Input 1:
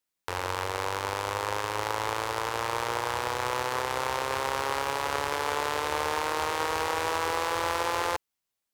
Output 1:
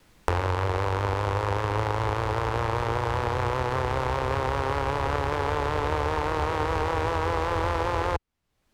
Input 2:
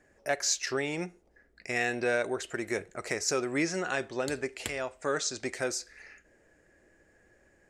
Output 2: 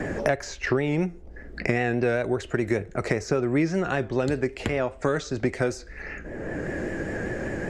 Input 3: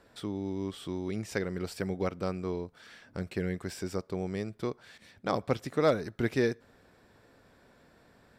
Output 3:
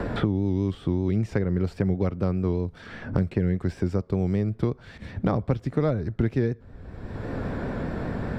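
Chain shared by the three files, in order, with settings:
vibrato 5.1 Hz 52 cents; RIAA curve playback; three bands compressed up and down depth 100%; normalise loudness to -27 LUFS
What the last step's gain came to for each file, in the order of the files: +1.0 dB, +3.5 dB, +1.5 dB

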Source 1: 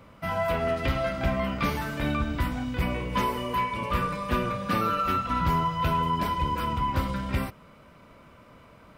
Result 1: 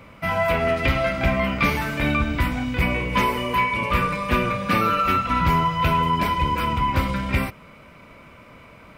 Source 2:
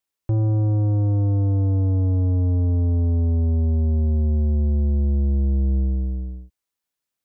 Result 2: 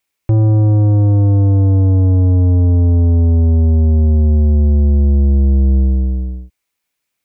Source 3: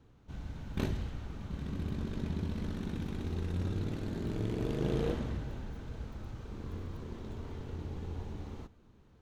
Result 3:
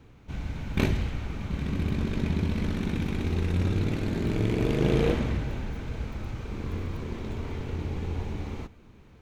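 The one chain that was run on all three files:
peaking EQ 2.3 kHz +8 dB 0.43 oct; peak normalisation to -9 dBFS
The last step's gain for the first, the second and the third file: +5.0 dB, +8.5 dB, +8.5 dB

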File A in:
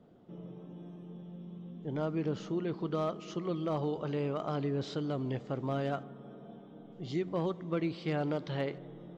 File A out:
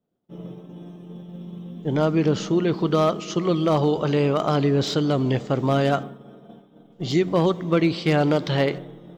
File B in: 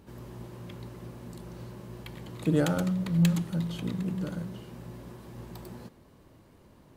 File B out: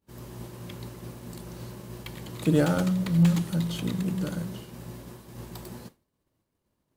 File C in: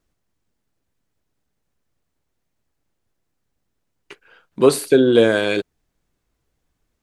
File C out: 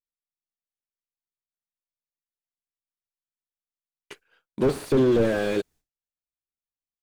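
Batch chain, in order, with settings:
expander -41 dBFS; treble shelf 3.9 kHz +9 dB; slew-rate limiter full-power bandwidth 74 Hz; peak normalisation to -9 dBFS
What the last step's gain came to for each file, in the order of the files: +13.0 dB, +3.0 dB, -3.0 dB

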